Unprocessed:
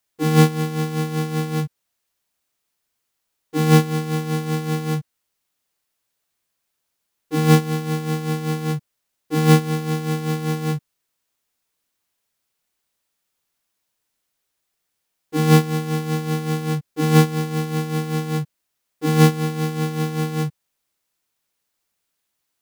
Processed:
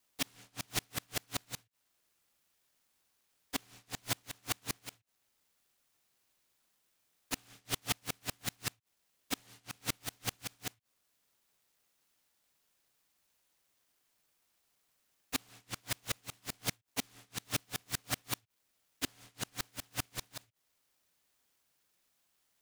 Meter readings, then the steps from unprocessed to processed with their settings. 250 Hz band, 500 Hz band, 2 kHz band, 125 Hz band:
-27.0 dB, -27.0 dB, -13.0 dB, -29.5 dB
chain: treble ducked by the level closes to 1200 Hz, closed at -13 dBFS; HPF 460 Hz 12 dB/oct; fixed phaser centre 1600 Hz, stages 6; frequency shift -38 Hz; flipped gate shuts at -26 dBFS, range -38 dB; noise-modulated delay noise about 2500 Hz, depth 0.4 ms; gain +6 dB

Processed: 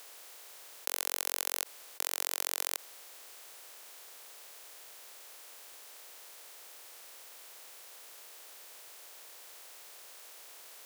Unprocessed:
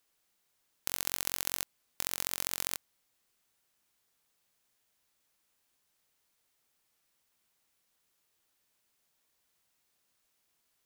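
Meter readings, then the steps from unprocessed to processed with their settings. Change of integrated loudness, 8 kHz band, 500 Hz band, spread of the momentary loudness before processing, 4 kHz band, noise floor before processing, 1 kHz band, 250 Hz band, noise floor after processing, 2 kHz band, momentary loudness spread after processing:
-5.5 dB, +1.0 dB, +3.5 dB, 7 LU, +1.5 dB, -77 dBFS, +2.5 dB, -7.0 dB, -52 dBFS, +1.5 dB, 17 LU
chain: per-bin compression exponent 0.4; ladder high-pass 370 Hz, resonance 30%; gain +5.5 dB

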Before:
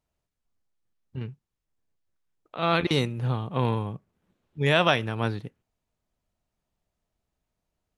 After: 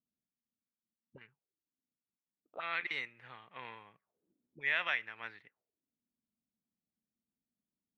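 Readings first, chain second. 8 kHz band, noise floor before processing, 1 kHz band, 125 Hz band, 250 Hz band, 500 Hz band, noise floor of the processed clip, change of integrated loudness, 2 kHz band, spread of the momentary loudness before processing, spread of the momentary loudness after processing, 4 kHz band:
under -20 dB, -84 dBFS, -15.5 dB, -36.5 dB, -30.5 dB, -23.5 dB, under -85 dBFS, -11.5 dB, -5.5 dB, 18 LU, 19 LU, -14.5 dB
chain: auto-wah 230–2000 Hz, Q 4.8, up, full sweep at -29.5 dBFS

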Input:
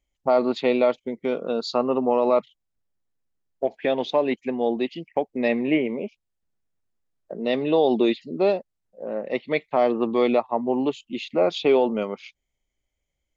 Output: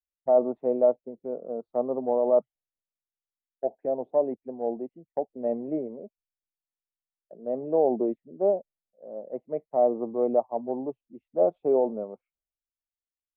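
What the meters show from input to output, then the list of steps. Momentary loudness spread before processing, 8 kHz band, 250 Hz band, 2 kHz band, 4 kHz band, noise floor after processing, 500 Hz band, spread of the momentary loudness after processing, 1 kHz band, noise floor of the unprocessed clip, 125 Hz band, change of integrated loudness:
9 LU, n/a, -8.0 dB, under -30 dB, under -40 dB, under -85 dBFS, -3.0 dB, 14 LU, -6.0 dB, -80 dBFS, -9.0 dB, -4.0 dB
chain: ladder low-pass 790 Hz, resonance 45%; three-band expander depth 70%

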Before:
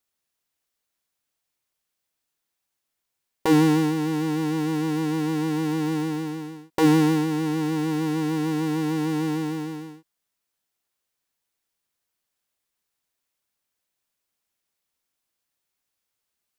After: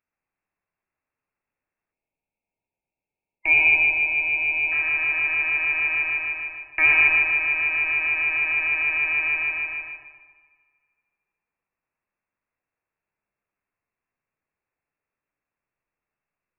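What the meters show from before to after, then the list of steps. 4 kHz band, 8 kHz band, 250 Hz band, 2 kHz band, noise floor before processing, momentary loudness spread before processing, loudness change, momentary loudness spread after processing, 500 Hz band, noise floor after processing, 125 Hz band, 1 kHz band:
-2.5 dB, under -35 dB, under -25 dB, +19.5 dB, -82 dBFS, 12 LU, +4.5 dB, 12 LU, -15.5 dB, under -85 dBFS, under -20 dB, -5.5 dB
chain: de-hum 85.31 Hz, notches 29; inverted band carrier 2700 Hz; on a send: darkening echo 0.121 s, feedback 52%, low-pass 1800 Hz, level -4 dB; on the sum: spectral gain 1.92–4.72, 980–2100 Hz -19 dB; Schroeder reverb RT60 1.8 s, combs from 30 ms, DRR 9 dB

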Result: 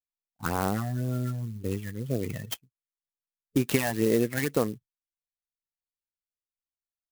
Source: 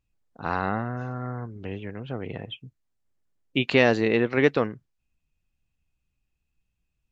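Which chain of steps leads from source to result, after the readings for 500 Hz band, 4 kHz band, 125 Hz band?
-5.0 dB, -6.0 dB, +1.5 dB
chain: gate with hold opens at -33 dBFS; spectral noise reduction 19 dB; compressor 10:1, threshold -22 dBFS, peak gain reduction 10 dB; phaser stages 12, 2 Hz, lowest notch 390–3200 Hz; clock jitter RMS 0.055 ms; gain +3.5 dB

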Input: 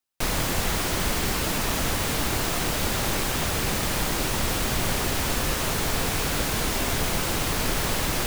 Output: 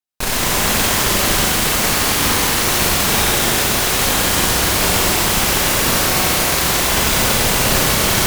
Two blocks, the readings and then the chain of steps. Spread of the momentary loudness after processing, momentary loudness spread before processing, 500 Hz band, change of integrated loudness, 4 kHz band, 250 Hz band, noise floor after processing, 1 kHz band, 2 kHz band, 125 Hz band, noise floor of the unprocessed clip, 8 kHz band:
1 LU, 0 LU, +9.0 dB, +11.0 dB, +11.5 dB, +7.5 dB, -18 dBFS, +10.0 dB, +11.0 dB, +6.0 dB, -27 dBFS, +12.5 dB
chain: added harmonics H 5 -20 dB, 7 -11 dB, 8 -8 dB, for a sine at -11 dBFS; Schroeder reverb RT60 3.2 s, combs from 31 ms, DRR -6.5 dB; gain -1.5 dB

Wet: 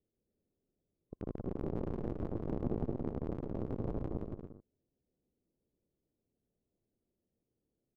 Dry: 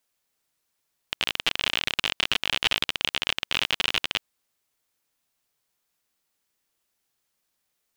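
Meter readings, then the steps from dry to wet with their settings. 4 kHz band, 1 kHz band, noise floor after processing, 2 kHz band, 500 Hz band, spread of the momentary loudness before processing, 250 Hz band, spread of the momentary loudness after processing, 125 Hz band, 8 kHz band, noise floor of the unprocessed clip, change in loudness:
under -40 dB, -14.5 dB, under -85 dBFS, -36.5 dB, +1.0 dB, 6 LU, +6.0 dB, 9 LU, +7.0 dB, under -40 dB, -78 dBFS, -14.5 dB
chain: band inversion scrambler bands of 1000 Hz; inverse Chebyshev low-pass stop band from 2000 Hz, stop band 70 dB; transient shaper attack -7 dB, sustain -1 dB; on a send: bouncing-ball echo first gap 0.17 s, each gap 0.65×, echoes 5; on the sum: gain +7.5 dB

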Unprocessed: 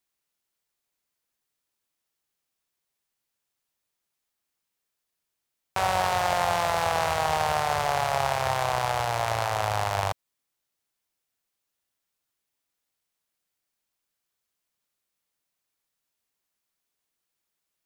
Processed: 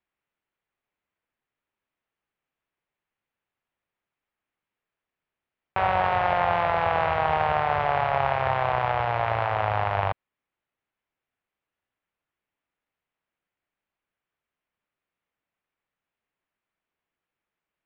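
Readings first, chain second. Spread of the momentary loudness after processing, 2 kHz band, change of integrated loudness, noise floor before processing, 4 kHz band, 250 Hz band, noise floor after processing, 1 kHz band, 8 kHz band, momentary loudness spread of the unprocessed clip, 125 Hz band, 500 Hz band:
4 LU, +1.5 dB, +1.5 dB, -83 dBFS, -6.5 dB, +2.0 dB, under -85 dBFS, +2.0 dB, under -30 dB, 4 LU, +2.0 dB, +2.0 dB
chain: LPF 2700 Hz 24 dB/oct; gain +2 dB

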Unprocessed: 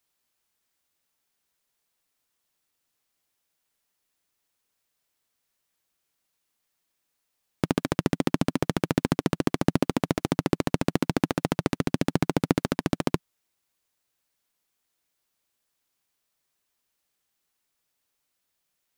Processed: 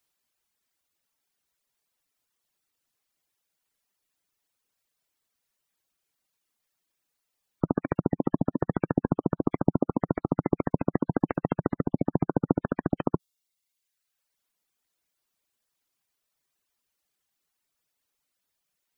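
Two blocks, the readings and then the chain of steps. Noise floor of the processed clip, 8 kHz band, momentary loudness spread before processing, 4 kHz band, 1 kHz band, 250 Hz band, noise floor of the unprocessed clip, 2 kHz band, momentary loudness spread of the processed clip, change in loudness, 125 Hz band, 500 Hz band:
-82 dBFS, under -30 dB, 3 LU, under -25 dB, -1.5 dB, -1.0 dB, -79 dBFS, -8.5 dB, 3 LU, -1.5 dB, -1.0 dB, -1.0 dB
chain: spectral gate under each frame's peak -20 dB strong; reverb removal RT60 0.98 s

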